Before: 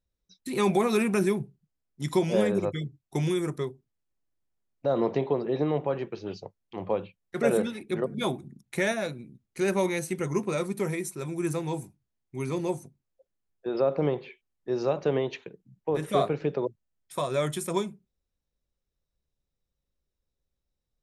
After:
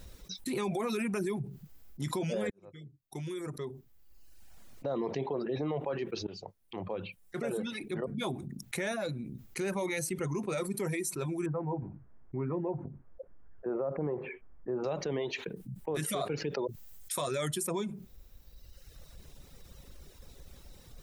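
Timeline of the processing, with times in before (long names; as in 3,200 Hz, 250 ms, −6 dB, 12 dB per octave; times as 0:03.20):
0:02.50–0:04.97: fade in quadratic
0:06.27–0:09.88: fade in, from −23.5 dB
0:11.46–0:14.84: inverse Chebyshev low-pass filter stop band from 5,200 Hz, stop band 60 dB
0:15.94–0:17.50: high-shelf EQ 2,900 Hz +9.5 dB
whole clip: reverb reduction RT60 1 s; brickwall limiter −21.5 dBFS; envelope flattener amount 70%; level −5 dB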